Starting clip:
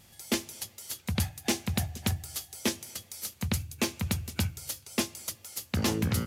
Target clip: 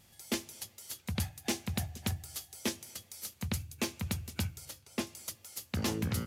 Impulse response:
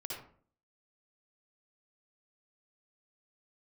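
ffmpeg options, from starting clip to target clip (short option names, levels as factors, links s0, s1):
-filter_complex "[0:a]asettb=1/sr,asplit=3[s0][s1][s2];[s0]atrim=end=4.654[s3];[s1]atrim=start=4.65:end=5.07,asetpts=PTS-STARTPTS,afade=t=in:d=0.004:c=qsin,afade=t=out:st=0.416:d=0.004:c=qsin,highshelf=f=3700:g=-7[s4];[s2]atrim=start=5.066[s5];[s3][s4]acrossfade=d=0.004:c1=hsin:c2=qsin[s6];[s6][s5]acrossfade=d=0.004:c1=qsin:c2=hsin,volume=0.562"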